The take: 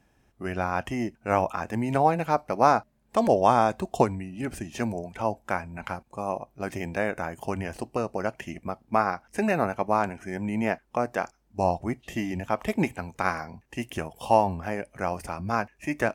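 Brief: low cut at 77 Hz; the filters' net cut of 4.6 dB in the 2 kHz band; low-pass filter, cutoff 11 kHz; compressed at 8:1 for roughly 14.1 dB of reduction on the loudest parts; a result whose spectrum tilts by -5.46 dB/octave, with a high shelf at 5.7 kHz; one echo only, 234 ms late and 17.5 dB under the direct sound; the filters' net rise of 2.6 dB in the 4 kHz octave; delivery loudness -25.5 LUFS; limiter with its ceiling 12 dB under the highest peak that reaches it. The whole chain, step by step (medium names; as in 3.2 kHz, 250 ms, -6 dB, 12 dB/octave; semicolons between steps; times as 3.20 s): high-pass 77 Hz; low-pass 11 kHz; peaking EQ 2 kHz -8 dB; peaking EQ 4 kHz +5 dB; treble shelf 5.7 kHz +4 dB; compression 8:1, threshold -29 dBFS; peak limiter -26.5 dBFS; delay 234 ms -17.5 dB; trim +14 dB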